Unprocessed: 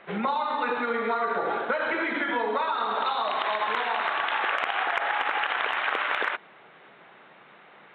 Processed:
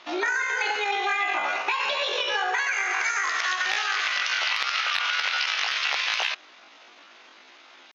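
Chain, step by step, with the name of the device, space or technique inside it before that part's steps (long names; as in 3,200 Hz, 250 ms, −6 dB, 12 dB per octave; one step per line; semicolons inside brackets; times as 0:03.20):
chipmunk voice (pitch shifter +9.5 semitones)
level +1.5 dB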